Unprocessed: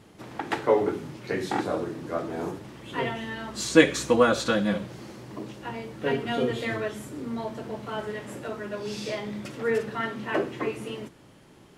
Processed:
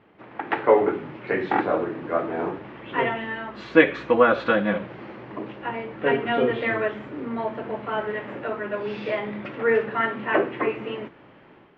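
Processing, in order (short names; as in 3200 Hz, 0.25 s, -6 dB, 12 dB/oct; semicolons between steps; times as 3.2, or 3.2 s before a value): LPF 2600 Hz 24 dB/oct; low shelf 220 Hz -12 dB; AGC gain up to 7.5 dB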